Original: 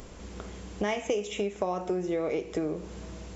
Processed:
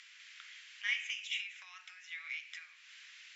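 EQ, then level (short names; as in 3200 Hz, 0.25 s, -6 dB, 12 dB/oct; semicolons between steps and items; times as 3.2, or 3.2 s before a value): steep high-pass 1800 Hz 36 dB/oct; LPF 3300 Hz 12 dB/oct; +5.0 dB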